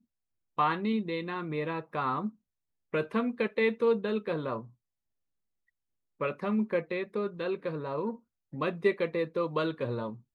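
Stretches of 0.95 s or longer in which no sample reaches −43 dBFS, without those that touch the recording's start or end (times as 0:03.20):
0:04.66–0:06.21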